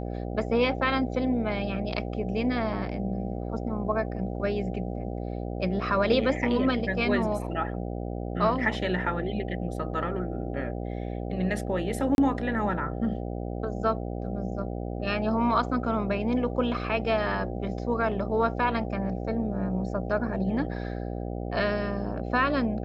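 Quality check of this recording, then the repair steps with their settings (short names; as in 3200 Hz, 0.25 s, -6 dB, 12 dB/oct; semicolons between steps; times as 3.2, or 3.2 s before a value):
buzz 60 Hz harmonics 13 -33 dBFS
12.15–12.18 gap 31 ms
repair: de-hum 60 Hz, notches 13; interpolate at 12.15, 31 ms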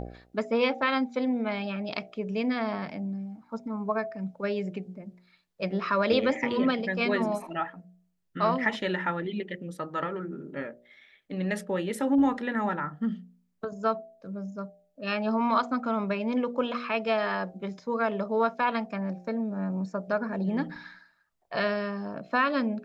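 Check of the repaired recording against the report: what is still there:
none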